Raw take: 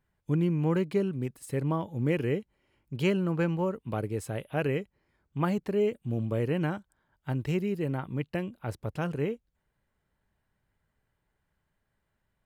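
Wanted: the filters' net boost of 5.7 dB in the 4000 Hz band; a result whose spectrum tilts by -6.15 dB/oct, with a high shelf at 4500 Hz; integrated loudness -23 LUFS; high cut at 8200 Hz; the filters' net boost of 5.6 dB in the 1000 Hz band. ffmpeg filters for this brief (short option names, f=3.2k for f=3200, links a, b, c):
-af "lowpass=8.2k,equalizer=f=1k:t=o:g=6.5,equalizer=f=4k:t=o:g=7,highshelf=f=4.5k:g=3,volume=6.5dB"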